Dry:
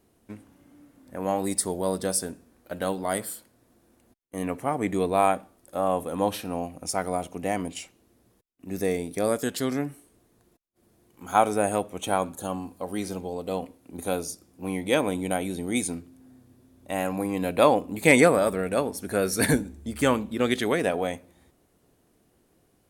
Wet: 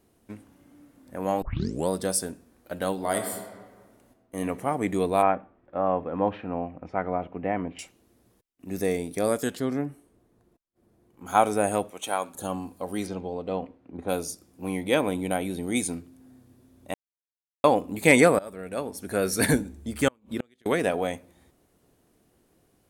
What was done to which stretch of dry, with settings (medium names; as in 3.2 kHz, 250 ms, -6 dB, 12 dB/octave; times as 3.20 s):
1.42 s: tape start 0.47 s
2.93–4.39 s: reverb throw, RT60 1.6 s, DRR 5 dB
5.22–7.79 s: low-pass 2.3 kHz 24 dB/octave
9.55–11.26 s: treble shelf 2 kHz -11 dB
11.90–12.35 s: high-pass 720 Hz 6 dB/octave
13.06–14.08 s: low-pass 4.3 kHz -> 1.7 kHz
14.83–15.63 s: peaking EQ 6.9 kHz -5.5 dB
16.94–17.64 s: mute
18.39–19.28 s: fade in, from -20.5 dB
20.08–20.66 s: inverted gate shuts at -17 dBFS, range -37 dB